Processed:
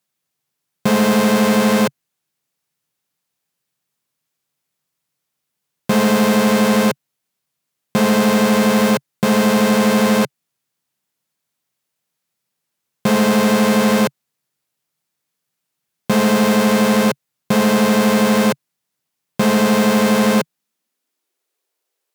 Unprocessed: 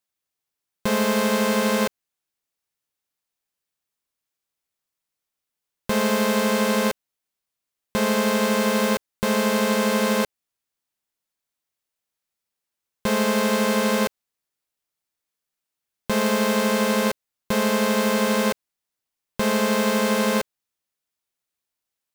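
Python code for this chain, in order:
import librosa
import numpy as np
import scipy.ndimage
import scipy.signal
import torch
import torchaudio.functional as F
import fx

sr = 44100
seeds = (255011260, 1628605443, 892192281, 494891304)

y = fx.clip_asym(x, sr, top_db=-24.5, bottom_db=-16.0)
y = fx.filter_sweep_highpass(y, sr, from_hz=140.0, to_hz=410.0, start_s=20.3, end_s=21.53, q=2.9)
y = y * 10.0 ** (7.0 / 20.0)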